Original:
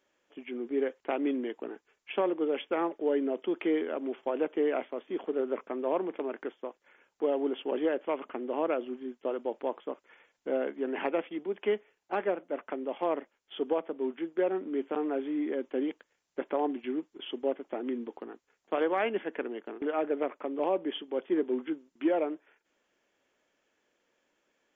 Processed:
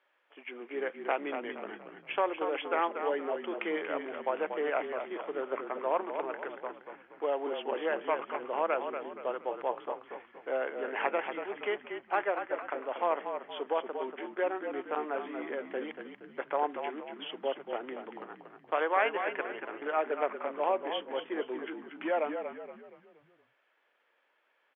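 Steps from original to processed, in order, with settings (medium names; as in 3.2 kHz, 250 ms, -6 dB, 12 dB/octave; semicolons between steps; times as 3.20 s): high-pass 880 Hz 12 dB/octave; distance through air 430 m; frequency-shifting echo 235 ms, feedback 41%, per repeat -36 Hz, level -7.5 dB; trim +8.5 dB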